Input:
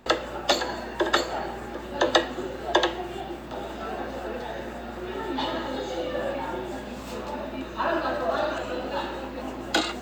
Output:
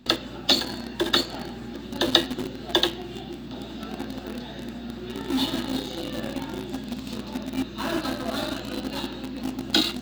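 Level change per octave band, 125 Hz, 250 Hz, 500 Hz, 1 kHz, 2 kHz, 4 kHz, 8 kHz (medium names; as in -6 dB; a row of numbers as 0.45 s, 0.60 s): +3.5 dB, +4.5 dB, -4.5 dB, -6.0 dB, -3.0 dB, +6.5 dB, +2.0 dB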